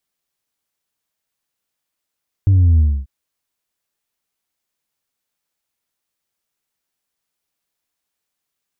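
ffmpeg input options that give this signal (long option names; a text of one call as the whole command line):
ffmpeg -f lavfi -i "aevalsrc='0.355*clip((0.59-t)/0.27,0,1)*tanh(1.26*sin(2*PI*100*0.59/log(65/100)*(exp(log(65/100)*t/0.59)-1)))/tanh(1.26)':duration=0.59:sample_rate=44100" out.wav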